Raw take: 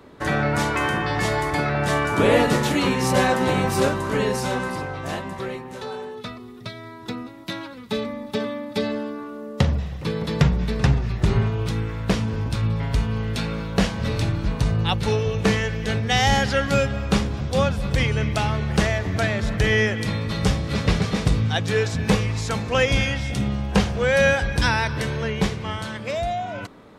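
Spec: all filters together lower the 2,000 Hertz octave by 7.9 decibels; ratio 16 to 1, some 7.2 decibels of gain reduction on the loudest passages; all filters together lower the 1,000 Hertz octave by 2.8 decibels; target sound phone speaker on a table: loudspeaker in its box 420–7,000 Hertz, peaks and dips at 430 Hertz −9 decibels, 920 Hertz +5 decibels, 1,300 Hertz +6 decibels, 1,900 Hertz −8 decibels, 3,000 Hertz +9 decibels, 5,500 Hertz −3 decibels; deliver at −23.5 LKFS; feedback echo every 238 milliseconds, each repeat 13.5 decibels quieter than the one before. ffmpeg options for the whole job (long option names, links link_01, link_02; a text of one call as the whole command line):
ffmpeg -i in.wav -af "equalizer=frequency=1000:width_type=o:gain=-6,equalizer=frequency=2000:width_type=o:gain=-8,acompressor=threshold=-21dB:ratio=16,highpass=frequency=420:width=0.5412,highpass=frequency=420:width=1.3066,equalizer=frequency=430:width_type=q:width=4:gain=-9,equalizer=frequency=920:width_type=q:width=4:gain=5,equalizer=frequency=1300:width_type=q:width=4:gain=6,equalizer=frequency=1900:width_type=q:width=4:gain=-8,equalizer=frequency=3000:width_type=q:width=4:gain=9,equalizer=frequency=5500:width_type=q:width=4:gain=-3,lowpass=frequency=7000:width=0.5412,lowpass=frequency=7000:width=1.3066,aecho=1:1:238|476:0.211|0.0444,volume=9dB" out.wav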